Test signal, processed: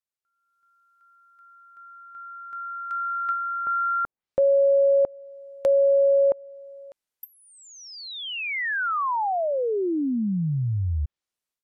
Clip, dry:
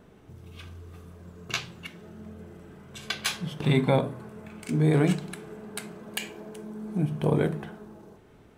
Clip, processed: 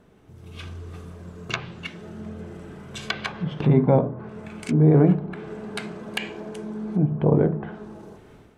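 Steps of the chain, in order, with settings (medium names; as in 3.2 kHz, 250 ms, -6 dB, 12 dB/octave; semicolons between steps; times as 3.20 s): level rider gain up to 9.5 dB; low-pass that closes with the level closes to 890 Hz, closed at -17.5 dBFS; trim -2 dB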